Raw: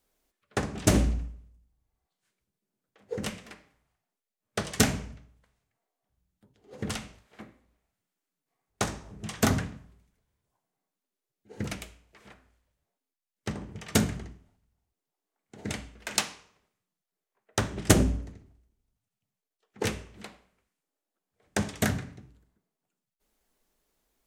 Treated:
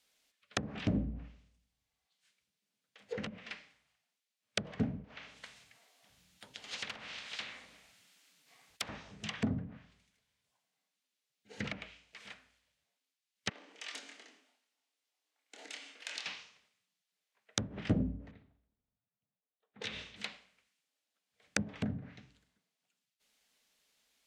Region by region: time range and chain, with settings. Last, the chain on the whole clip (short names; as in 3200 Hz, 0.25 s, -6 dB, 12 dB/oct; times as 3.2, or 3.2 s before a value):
5.04–8.89 self-modulated delay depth 0.15 ms + spectral compressor 4:1
13.49–16.26 compressor, threshold -43 dBFS + elliptic high-pass 280 Hz, stop band 70 dB + doubler 26 ms -5 dB
18.31–20.16 low-pass opened by the level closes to 890 Hz, open at -32.5 dBFS + bell 3700 Hz +9 dB 0.26 oct + compressor 10:1, threshold -35 dBFS
whole clip: weighting filter D; treble ducked by the level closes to 340 Hz, closed at -24.5 dBFS; bell 360 Hz -12 dB 0.31 oct; gain -3 dB